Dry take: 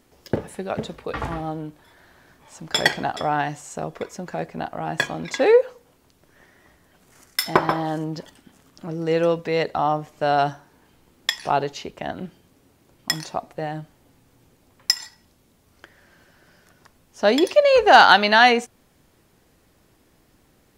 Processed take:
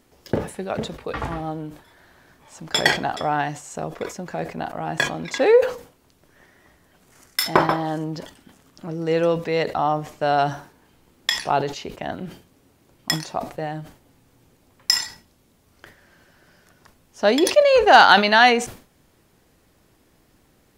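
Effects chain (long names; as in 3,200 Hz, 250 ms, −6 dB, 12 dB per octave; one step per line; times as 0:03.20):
level that may fall only so fast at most 130 dB per second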